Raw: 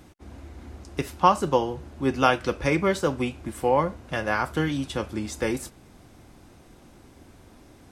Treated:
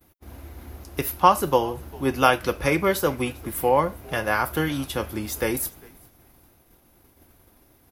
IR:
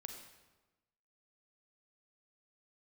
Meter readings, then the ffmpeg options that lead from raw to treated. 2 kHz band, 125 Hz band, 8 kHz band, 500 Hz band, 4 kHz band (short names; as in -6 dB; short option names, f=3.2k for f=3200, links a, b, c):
+2.5 dB, 0.0 dB, +6.5 dB, +1.5 dB, +2.5 dB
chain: -filter_complex "[0:a]asplit=2[a][b];[b]asplit=2[c][d];[c]adelay=399,afreqshift=-85,volume=-23dB[e];[d]adelay=798,afreqshift=-170,volume=-32.9dB[f];[e][f]amix=inputs=2:normalize=0[g];[a][g]amix=inputs=2:normalize=0,aexciter=amount=11.1:drive=4.9:freq=11k,equalizer=f=200:t=o:w=1.4:g=-4,agate=range=-33dB:threshold=-43dB:ratio=3:detection=peak,volume=2.5dB"